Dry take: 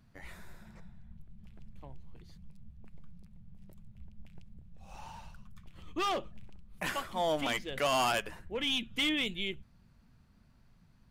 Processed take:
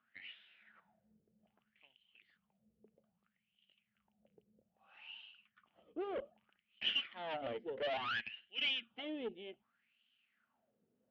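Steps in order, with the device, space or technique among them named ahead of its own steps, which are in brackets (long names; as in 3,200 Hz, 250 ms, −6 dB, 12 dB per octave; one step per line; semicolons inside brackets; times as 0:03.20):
0:07.97–0:08.37: high-pass filter 1,400 Hz 12 dB per octave
wah-wah guitar rig (LFO wah 0.62 Hz 430–3,100 Hz, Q 6.7; tube saturation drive 44 dB, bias 0.6; loudspeaker in its box 80–3,800 Hz, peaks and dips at 81 Hz −7 dB, 150 Hz −8 dB, 230 Hz +7 dB, 1,000 Hz −9 dB, 3,000 Hz +10 dB)
level +9 dB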